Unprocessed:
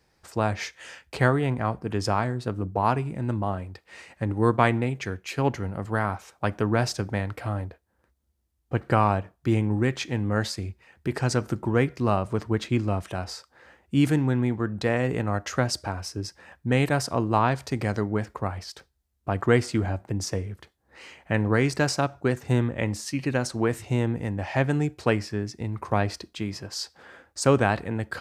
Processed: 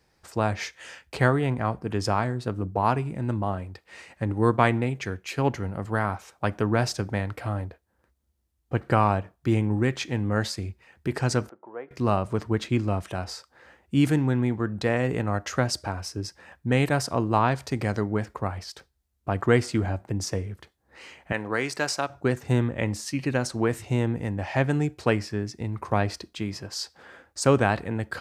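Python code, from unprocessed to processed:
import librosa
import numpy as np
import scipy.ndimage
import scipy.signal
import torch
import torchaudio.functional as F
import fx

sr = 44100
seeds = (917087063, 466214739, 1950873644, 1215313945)

y = fx.ladder_bandpass(x, sr, hz=770.0, resonance_pct=25, at=(11.49, 11.91))
y = fx.highpass(y, sr, hz=610.0, slope=6, at=(21.32, 22.1))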